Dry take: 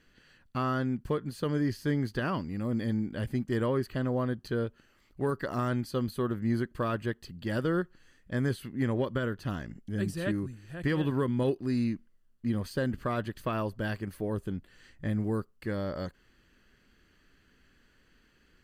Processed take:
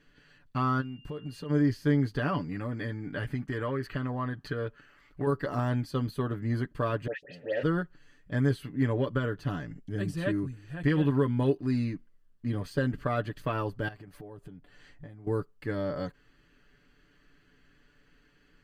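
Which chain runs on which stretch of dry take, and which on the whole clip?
0:00.80–0:01.49: downward compressor 16 to 1, threshold −36 dBFS + steady tone 2,800 Hz −55 dBFS
0:02.51–0:05.27: parametric band 1,600 Hz +8.5 dB 1.6 octaves + downward compressor 5 to 1, threshold −29 dBFS
0:07.07–0:07.63: leveller curve on the samples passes 5 + formant filter e + all-pass dispersion highs, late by 107 ms, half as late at 2,200 Hz
0:13.88–0:15.27: parametric band 730 Hz +5.5 dB 0.73 octaves + downward compressor 12 to 1, threshold −43 dBFS + one half of a high-frequency compander decoder only
whole clip: high-shelf EQ 5,900 Hz −8.5 dB; comb filter 6.9 ms, depth 65%

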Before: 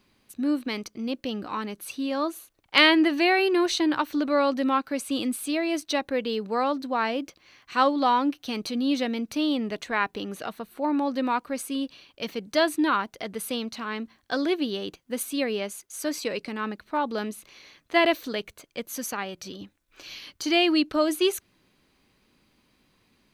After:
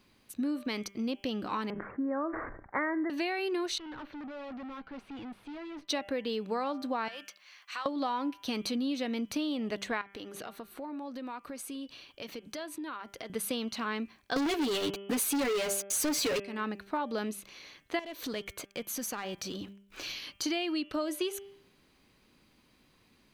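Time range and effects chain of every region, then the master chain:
0:01.70–0:03.10: Butterworth low-pass 2,000 Hz 96 dB per octave + level that may fall only so fast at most 73 dB per second
0:03.78–0:05.88: tube saturation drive 40 dB, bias 0.4 + high-frequency loss of the air 330 metres
0:07.08–0:07.86: high-pass filter 1,000 Hz + downward compressor, threshold −34 dBFS
0:10.01–0:13.30: notch filter 190 Hz, Q 5 + downward compressor, threshold −38 dBFS
0:14.36–0:16.40: comb filter 7 ms, depth 83% + leveller curve on the samples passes 5
0:17.99–0:20.12: downward compressor 3 to 1, threshold −43 dBFS + leveller curve on the samples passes 2
whole clip: hum removal 198.4 Hz, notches 17; downward compressor 12 to 1, threshold −29 dBFS

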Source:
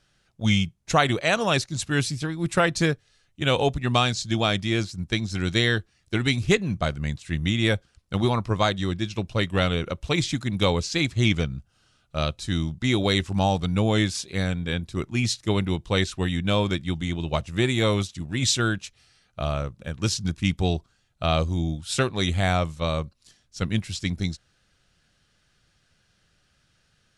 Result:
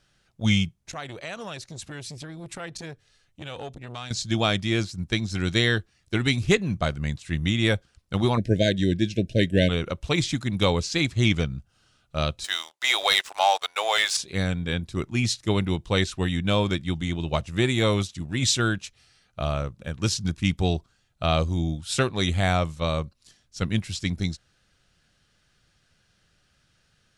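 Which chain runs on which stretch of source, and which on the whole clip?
0:00.79–0:04.11: downward compressor 3 to 1, threshold −35 dBFS + saturating transformer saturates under 770 Hz
0:08.37–0:09.69: linear-phase brick-wall band-stop 680–1,500 Hz + parametric band 270 Hz +6 dB 2 octaves
0:12.44–0:14.17: inverse Chebyshev high-pass filter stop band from 200 Hz, stop band 60 dB + leveller curve on the samples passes 2
whole clip: no processing

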